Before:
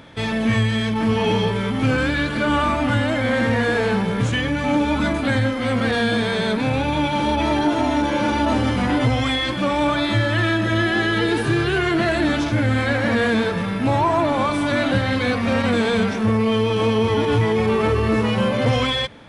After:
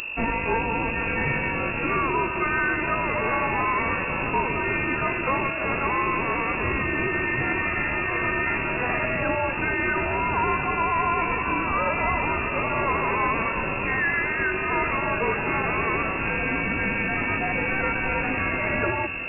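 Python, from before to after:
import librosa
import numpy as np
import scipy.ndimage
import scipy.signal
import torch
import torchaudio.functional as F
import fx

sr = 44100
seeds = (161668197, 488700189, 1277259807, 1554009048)

p1 = fx.rattle_buzz(x, sr, strikes_db=-25.0, level_db=-21.0)
p2 = np.diff(p1, prepend=0.0)
p3 = fx.add_hum(p2, sr, base_hz=50, snr_db=13)
p4 = p3 + fx.echo_feedback(p3, sr, ms=682, feedback_pct=47, wet_db=-12, dry=0)
p5 = fx.freq_invert(p4, sr, carrier_hz=2700)
p6 = fx.rider(p5, sr, range_db=10, speed_s=0.5)
p7 = p5 + F.gain(torch.from_numpy(p6), 1.0).numpy()
y = F.gain(torch.from_numpy(p7), 6.5).numpy()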